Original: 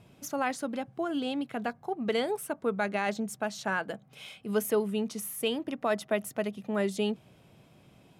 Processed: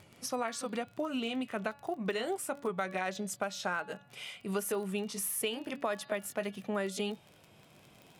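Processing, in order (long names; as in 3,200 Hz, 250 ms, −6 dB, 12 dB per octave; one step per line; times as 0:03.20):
pitch glide at a constant tempo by −2 semitones ending unshifted
low-shelf EQ 450 Hz −8.5 dB
hum removal 283.9 Hz, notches 17
downward compressor 6 to 1, threshold −35 dBFS, peak gain reduction 9.5 dB
surface crackle 26 per second −46 dBFS
level +5 dB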